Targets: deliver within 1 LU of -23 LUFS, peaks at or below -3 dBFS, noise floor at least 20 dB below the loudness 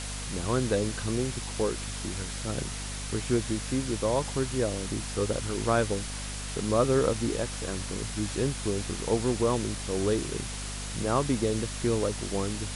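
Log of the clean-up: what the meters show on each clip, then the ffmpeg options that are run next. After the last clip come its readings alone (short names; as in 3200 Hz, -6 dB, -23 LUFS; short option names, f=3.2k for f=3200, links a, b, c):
hum 50 Hz; harmonics up to 250 Hz; hum level -36 dBFS; noise floor -36 dBFS; noise floor target -50 dBFS; loudness -29.5 LUFS; peak -11.5 dBFS; loudness target -23.0 LUFS
-> -af "bandreject=f=50:t=h:w=6,bandreject=f=100:t=h:w=6,bandreject=f=150:t=h:w=6,bandreject=f=200:t=h:w=6,bandreject=f=250:t=h:w=6"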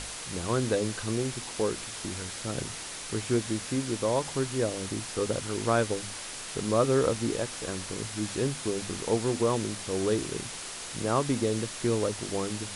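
hum none; noise floor -40 dBFS; noise floor target -50 dBFS
-> -af "afftdn=nr=10:nf=-40"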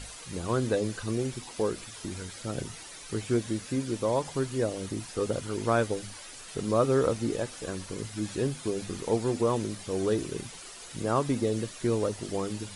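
noise floor -45 dBFS; noise floor target -51 dBFS
-> -af "afftdn=nr=6:nf=-45"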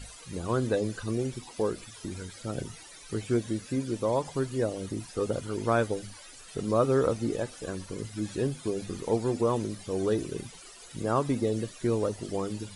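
noise floor -49 dBFS; noise floor target -51 dBFS
-> -af "afftdn=nr=6:nf=-49"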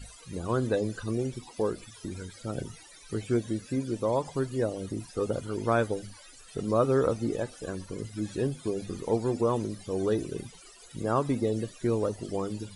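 noise floor -52 dBFS; loudness -31.0 LUFS; peak -13.0 dBFS; loudness target -23.0 LUFS
-> -af "volume=8dB"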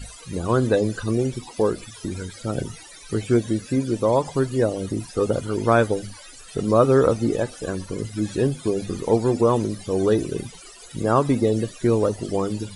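loudness -23.0 LUFS; peak -5.0 dBFS; noise floor -44 dBFS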